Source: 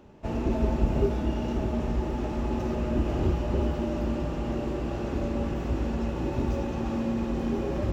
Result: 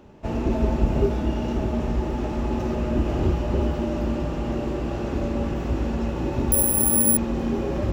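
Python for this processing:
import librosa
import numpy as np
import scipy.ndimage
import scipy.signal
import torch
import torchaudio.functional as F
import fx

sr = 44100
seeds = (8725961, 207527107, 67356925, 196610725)

y = fx.resample_bad(x, sr, factor=4, down='none', up='zero_stuff', at=(6.52, 7.17))
y = y * librosa.db_to_amplitude(3.5)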